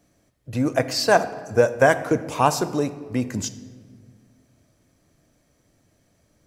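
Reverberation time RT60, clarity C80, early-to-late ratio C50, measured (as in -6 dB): 1.8 s, 15.5 dB, 14.0 dB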